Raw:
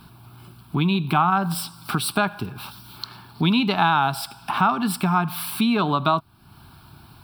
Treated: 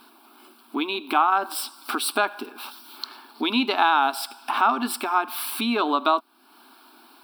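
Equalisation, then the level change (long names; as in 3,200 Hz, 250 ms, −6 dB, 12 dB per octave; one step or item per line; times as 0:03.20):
linear-phase brick-wall high-pass 230 Hz
0.0 dB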